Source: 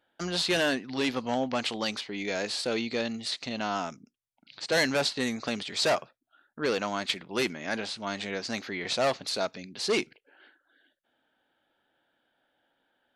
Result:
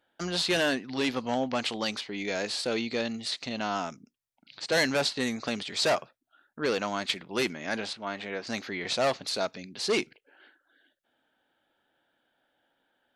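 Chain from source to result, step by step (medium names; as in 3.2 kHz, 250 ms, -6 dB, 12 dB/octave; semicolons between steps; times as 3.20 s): 7.93–8.47 s: tone controls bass -6 dB, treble -14 dB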